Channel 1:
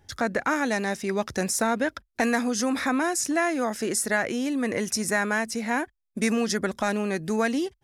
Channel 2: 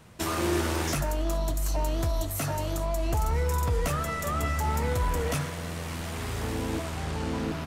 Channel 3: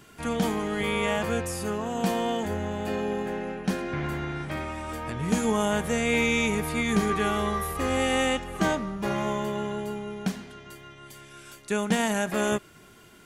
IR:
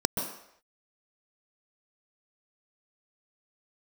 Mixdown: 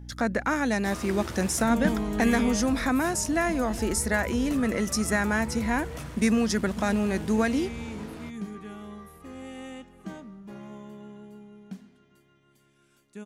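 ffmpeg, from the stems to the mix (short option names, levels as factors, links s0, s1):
-filter_complex "[0:a]equalizer=f=210:t=o:w=0.69:g=5,aeval=exprs='val(0)+0.0112*(sin(2*PI*60*n/s)+sin(2*PI*2*60*n/s)/2+sin(2*PI*3*60*n/s)/3+sin(2*PI*4*60*n/s)/4+sin(2*PI*5*60*n/s)/5)':c=same,volume=0.794[s0];[1:a]adelay=650,volume=0.316[s1];[2:a]equalizer=f=220:w=1.1:g=10,adelay=1450,volume=0.422,afade=t=out:st=2.43:d=0.22:silence=0.237137[s2];[s0][s1][s2]amix=inputs=3:normalize=0"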